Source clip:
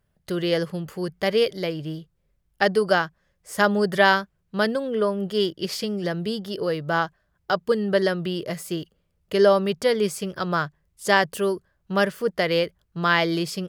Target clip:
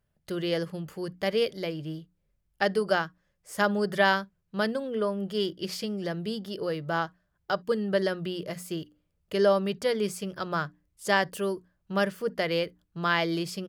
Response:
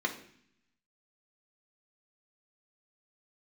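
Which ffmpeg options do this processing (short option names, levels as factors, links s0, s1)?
-filter_complex "[0:a]bandreject=f=60:t=h:w=6,bandreject=f=120:t=h:w=6,bandreject=f=180:t=h:w=6,bandreject=f=240:t=h:w=6,bandreject=f=300:t=h:w=6,asplit=2[s0][s1];[s1]aecho=1:1:5.4:0.49[s2];[1:a]atrim=start_sample=2205,atrim=end_sample=3087[s3];[s2][s3]afir=irnorm=-1:irlink=0,volume=0.0596[s4];[s0][s4]amix=inputs=2:normalize=0,volume=0.562"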